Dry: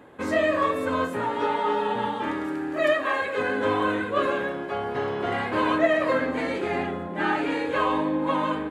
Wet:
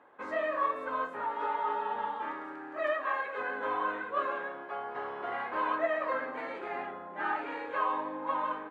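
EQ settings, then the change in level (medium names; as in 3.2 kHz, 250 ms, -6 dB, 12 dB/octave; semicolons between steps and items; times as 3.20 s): band-pass filter 1.1 kHz, Q 1.2; -4.5 dB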